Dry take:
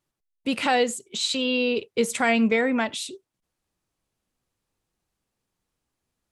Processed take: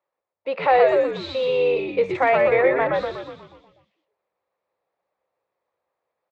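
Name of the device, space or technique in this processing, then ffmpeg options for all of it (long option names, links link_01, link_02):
frequency-shifting delay pedal into a guitar cabinet: -filter_complex "[0:a]acrossover=split=530 2000:gain=0.0794 1 0.2[link_01][link_02][link_03];[link_01][link_02][link_03]amix=inputs=3:normalize=0,asplit=9[link_04][link_05][link_06][link_07][link_08][link_09][link_10][link_11][link_12];[link_05]adelay=122,afreqshift=-100,volume=-3dB[link_13];[link_06]adelay=244,afreqshift=-200,volume=-7.9dB[link_14];[link_07]adelay=366,afreqshift=-300,volume=-12.8dB[link_15];[link_08]adelay=488,afreqshift=-400,volume=-17.6dB[link_16];[link_09]adelay=610,afreqshift=-500,volume=-22.5dB[link_17];[link_10]adelay=732,afreqshift=-600,volume=-27.4dB[link_18];[link_11]adelay=854,afreqshift=-700,volume=-32.3dB[link_19];[link_12]adelay=976,afreqshift=-800,volume=-37.2dB[link_20];[link_04][link_13][link_14][link_15][link_16][link_17][link_18][link_19][link_20]amix=inputs=9:normalize=0,highpass=96,equalizer=frequency=120:width_type=q:width=4:gain=-4,equalizer=frequency=240:width_type=q:width=4:gain=-9,equalizer=frequency=530:width_type=q:width=4:gain=10,equalizer=frequency=1500:width_type=q:width=4:gain=-7,equalizer=frequency=3000:width_type=q:width=4:gain=-8,lowpass=frequency=4000:width=0.5412,lowpass=frequency=4000:width=1.3066,volume=6.5dB"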